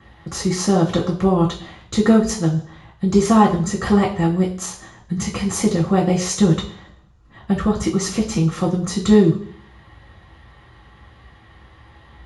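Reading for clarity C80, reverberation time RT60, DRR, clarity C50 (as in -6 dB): 14.0 dB, 0.55 s, -5.0 dB, 10.0 dB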